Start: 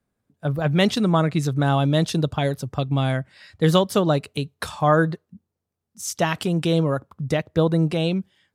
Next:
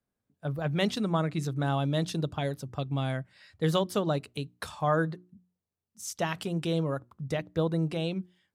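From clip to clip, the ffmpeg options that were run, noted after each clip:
-af "bandreject=f=60:t=h:w=6,bandreject=f=120:t=h:w=6,bandreject=f=180:t=h:w=6,bandreject=f=240:t=h:w=6,bandreject=f=300:t=h:w=6,bandreject=f=360:t=h:w=6,volume=-8.5dB"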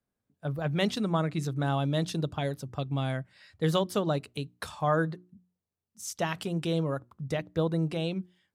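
-af anull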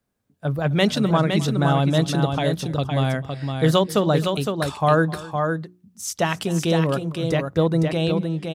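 -af "aecho=1:1:258|512:0.106|0.531,volume=8.5dB"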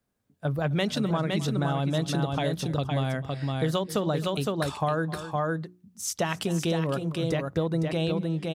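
-af "acompressor=threshold=-21dB:ratio=6,volume=-2dB"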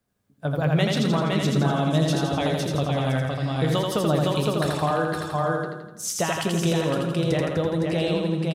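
-af "flanger=delay=9.5:depth=9.8:regen=73:speed=0.78:shape=sinusoidal,aecho=1:1:83|166|249|332|415|498|581|664:0.708|0.396|0.222|0.124|0.0696|0.039|0.0218|0.0122,volume=6.5dB"

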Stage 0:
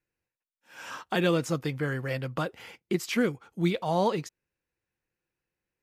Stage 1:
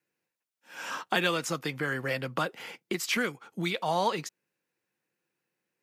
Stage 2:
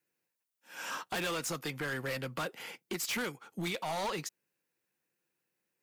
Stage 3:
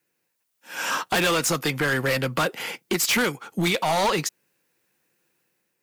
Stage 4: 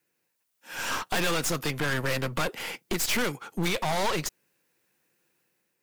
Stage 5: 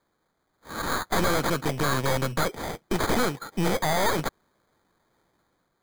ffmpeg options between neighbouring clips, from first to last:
-filter_complex "[0:a]highpass=f=150:w=0.5412,highpass=f=150:w=1.3066,acrossover=split=810|2200[a][b][c];[a]acompressor=threshold=-35dB:ratio=6[d];[d][b][c]amix=inputs=3:normalize=0,volume=4dB"
-af "highshelf=f=7.8k:g=8,asoftclip=type=hard:threshold=-28.5dB,volume=-3dB"
-af "dynaudnorm=f=120:g=7:m=4.5dB,volume=8.5dB"
-af "aeval=exprs='clip(val(0),-1,0.0188)':c=same,volume=-1.5dB"
-af "acrusher=samples=16:mix=1:aa=0.000001,volume=3dB"

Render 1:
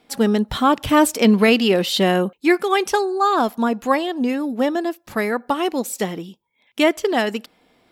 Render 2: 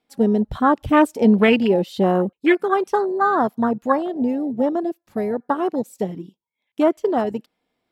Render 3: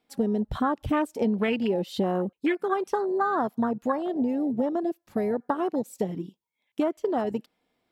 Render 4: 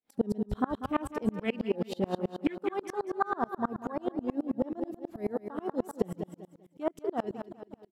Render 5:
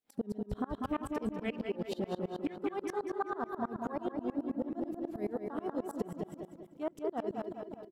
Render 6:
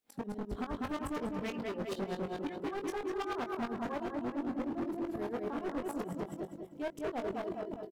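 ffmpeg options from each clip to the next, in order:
-af "afwtdn=0.1"
-af "acompressor=threshold=-23dB:ratio=5"
-filter_complex "[0:a]asplit=2[a][b];[b]aecho=0:1:194|388|582|776|970:0.376|0.177|0.083|0.039|0.0183[c];[a][c]amix=inputs=2:normalize=0,aeval=exprs='val(0)*pow(10,-32*if(lt(mod(-9.3*n/s,1),2*abs(-9.3)/1000),1-mod(-9.3*n/s,1)/(2*abs(-9.3)/1000),(mod(-9.3*n/s,1)-2*abs(-9.3)/1000)/(1-2*abs(-9.3)/1000))/20)':c=same,volume=2dB"
-filter_complex "[0:a]acompressor=threshold=-32dB:ratio=6,asplit=2[a][b];[b]adelay=197,lowpass=f=3.1k:p=1,volume=-6.5dB,asplit=2[c][d];[d]adelay=197,lowpass=f=3.1k:p=1,volume=0.44,asplit=2[e][f];[f]adelay=197,lowpass=f=3.1k:p=1,volume=0.44,asplit=2[g][h];[h]adelay=197,lowpass=f=3.1k:p=1,volume=0.44,asplit=2[i][j];[j]adelay=197,lowpass=f=3.1k:p=1,volume=0.44[k];[a][c][e][g][i][k]amix=inputs=6:normalize=0"
-filter_complex "[0:a]asoftclip=type=hard:threshold=-37dB,asplit=2[a][b];[b]adelay=21,volume=-7.5dB[c];[a][c]amix=inputs=2:normalize=0,volume=3.5dB"

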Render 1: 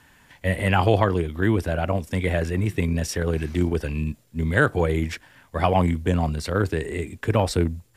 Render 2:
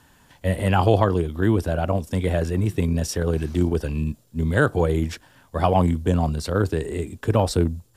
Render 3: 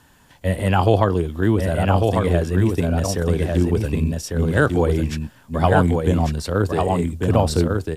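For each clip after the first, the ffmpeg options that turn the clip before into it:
-af "equalizer=f=2.1k:t=o:w=0.78:g=-9,volume=1.5dB"
-af "aecho=1:1:1148:0.668,volume=1.5dB"

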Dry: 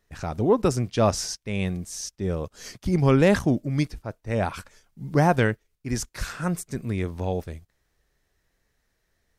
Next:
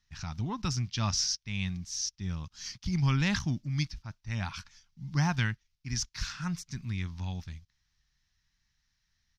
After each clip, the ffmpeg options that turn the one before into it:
-af "firequalizer=gain_entry='entry(150,0);entry(470,-26);entry(890,-5);entry(3100,4);entry(5700,8);entry(8300,-13)':delay=0.05:min_phase=1,volume=-4.5dB"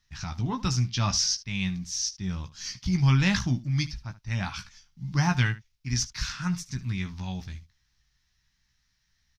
-af "aecho=1:1:16|74:0.473|0.141,volume=3.5dB"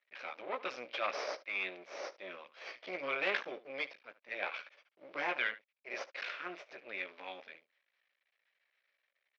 -af "aeval=exprs='max(val(0),0)':c=same,highpass=f=440:w=0.5412,highpass=f=440:w=1.3066,equalizer=f=560:t=q:w=4:g=9,equalizer=f=900:t=q:w=4:g=-4,equalizer=f=2.3k:t=q:w=4:g=8,lowpass=f=3.2k:w=0.5412,lowpass=f=3.2k:w=1.3066"

